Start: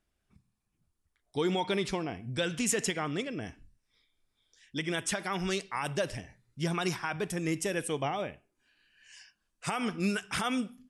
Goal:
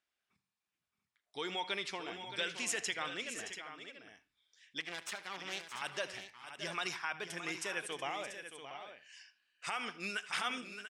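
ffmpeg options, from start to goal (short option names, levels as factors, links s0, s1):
-filter_complex "[0:a]asettb=1/sr,asplit=3[s0][s1][s2];[s0]atrim=end=4.804[s3];[s1]atrim=start=4.8:end=5.82,asetpts=PTS-STARTPTS,afade=t=in:d=0.004:c=qsin,afade=t=out:st=1.016:d=0.004:c=qsin,aeval=exprs='max(val(0),0)':c=same[s4];[s2]atrim=start=5.816[s5];[s3][s4]acrossfade=d=0.004:c1=hsin:c2=qsin[s6];[s6][s5]acrossfade=d=0.004:c1=qsin:c2=hsin,bandpass=f=2600:t=q:w=0.56:csg=0,asplit=2[s7][s8];[s8]aecho=0:1:78|621|687:0.112|0.282|0.299[s9];[s7][s9]amix=inputs=2:normalize=0,volume=0.841"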